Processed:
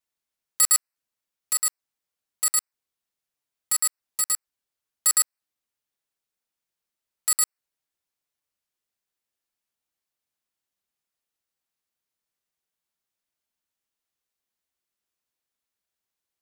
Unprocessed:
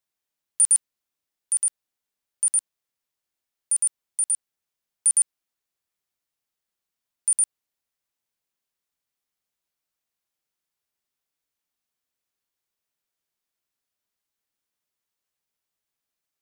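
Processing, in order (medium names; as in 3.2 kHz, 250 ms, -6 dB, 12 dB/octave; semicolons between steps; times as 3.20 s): touch-sensitive flanger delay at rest 7.1 ms, full sweep at -24.5 dBFS; polarity switched at an audio rate 1.6 kHz; trim +1.5 dB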